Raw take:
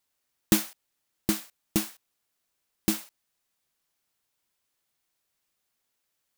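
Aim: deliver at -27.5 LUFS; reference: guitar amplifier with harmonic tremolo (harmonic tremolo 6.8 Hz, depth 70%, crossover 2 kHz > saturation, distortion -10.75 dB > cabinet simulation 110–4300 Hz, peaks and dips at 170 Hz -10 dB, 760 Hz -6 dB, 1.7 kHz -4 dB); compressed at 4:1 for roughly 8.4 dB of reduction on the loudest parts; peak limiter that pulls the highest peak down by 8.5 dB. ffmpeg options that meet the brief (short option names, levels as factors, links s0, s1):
-filter_complex "[0:a]acompressor=threshold=0.0501:ratio=4,alimiter=limit=0.141:level=0:latency=1,acrossover=split=2000[s0][s1];[s0]aeval=exprs='val(0)*(1-0.7/2+0.7/2*cos(2*PI*6.8*n/s))':c=same[s2];[s1]aeval=exprs='val(0)*(1-0.7/2-0.7/2*cos(2*PI*6.8*n/s))':c=same[s3];[s2][s3]amix=inputs=2:normalize=0,asoftclip=threshold=0.0251,highpass=110,equalizer=f=170:t=q:w=4:g=-10,equalizer=f=760:t=q:w=4:g=-6,equalizer=f=1700:t=q:w=4:g=-4,lowpass=f=4300:w=0.5412,lowpass=f=4300:w=1.3066,volume=14.1"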